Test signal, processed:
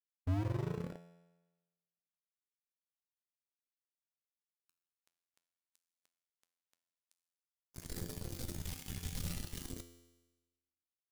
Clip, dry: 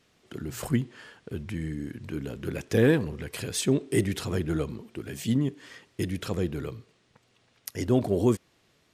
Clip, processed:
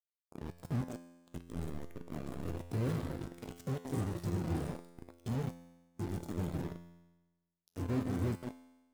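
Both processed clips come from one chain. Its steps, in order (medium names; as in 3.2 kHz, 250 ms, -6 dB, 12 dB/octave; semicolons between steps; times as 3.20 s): spectral levelling over time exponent 0.6; on a send: echo whose repeats swap between lows and highs 167 ms, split 1.6 kHz, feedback 66%, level -7.5 dB; on the sum: LFO notch square 0.52 Hz 320–2700 Hz; amplifier tone stack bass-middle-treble 10-0-1; companded quantiser 2-bit; bass shelf 110 Hz -5.5 dB; feedback comb 86 Hz, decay 1.7 s, harmonics all, mix 80%; spectral contrast expander 1.5:1; trim +8.5 dB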